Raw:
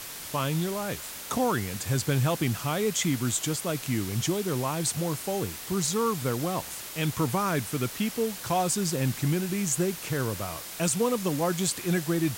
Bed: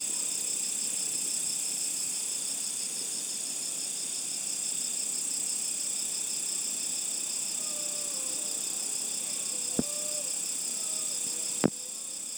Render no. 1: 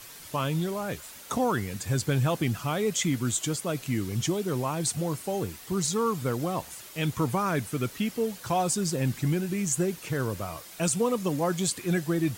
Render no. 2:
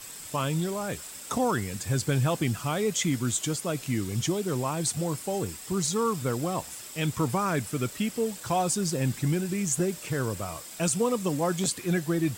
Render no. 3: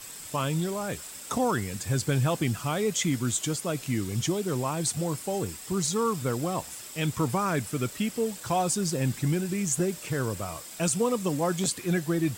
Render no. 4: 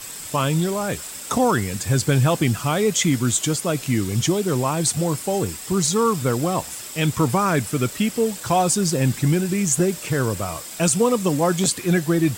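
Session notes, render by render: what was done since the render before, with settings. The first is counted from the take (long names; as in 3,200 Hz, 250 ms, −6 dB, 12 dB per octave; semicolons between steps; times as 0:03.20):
broadband denoise 8 dB, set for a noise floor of −40 dBFS
mix in bed −13 dB
no processing that can be heard
level +7.5 dB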